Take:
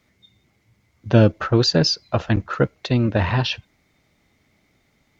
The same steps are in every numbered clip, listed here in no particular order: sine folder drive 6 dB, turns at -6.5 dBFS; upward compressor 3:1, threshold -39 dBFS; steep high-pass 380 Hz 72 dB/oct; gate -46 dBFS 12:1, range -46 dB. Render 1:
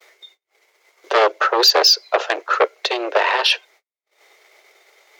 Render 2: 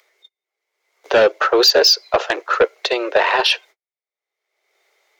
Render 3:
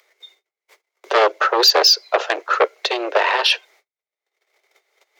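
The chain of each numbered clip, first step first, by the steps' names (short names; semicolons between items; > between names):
sine folder > steep high-pass > upward compressor > gate; gate > steep high-pass > sine folder > upward compressor; sine folder > gate > steep high-pass > upward compressor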